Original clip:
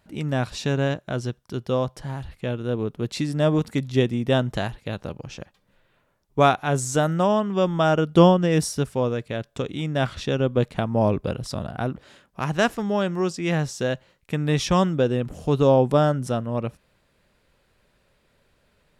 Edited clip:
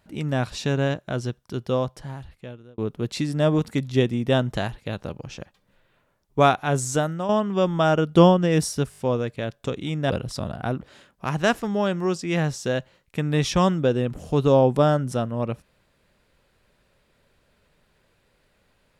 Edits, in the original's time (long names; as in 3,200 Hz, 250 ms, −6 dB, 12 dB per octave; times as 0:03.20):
0:01.75–0:02.78: fade out
0:06.94–0:07.29: fade out quadratic, to −8 dB
0:08.90: stutter 0.02 s, 5 plays
0:10.02–0:11.25: remove